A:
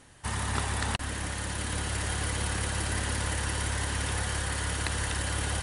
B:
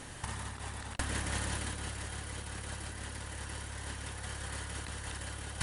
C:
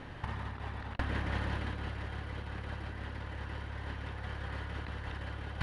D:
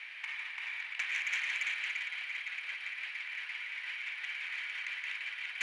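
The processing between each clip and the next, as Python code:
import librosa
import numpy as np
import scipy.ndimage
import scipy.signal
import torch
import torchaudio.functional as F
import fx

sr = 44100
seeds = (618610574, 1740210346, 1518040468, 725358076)

y1 = fx.over_compress(x, sr, threshold_db=-37.0, ratio=-0.5)
y2 = fx.air_absorb(y1, sr, metres=330.0)
y2 = y2 * librosa.db_to_amplitude(2.5)
y3 = fx.highpass_res(y2, sr, hz=2300.0, q=9.5)
y3 = y3 + 10.0 ** (-3.0 / 20.0) * np.pad(y3, (int(341 * sr / 1000.0), 0))[:len(y3)]
y3 = fx.transformer_sat(y3, sr, knee_hz=3000.0)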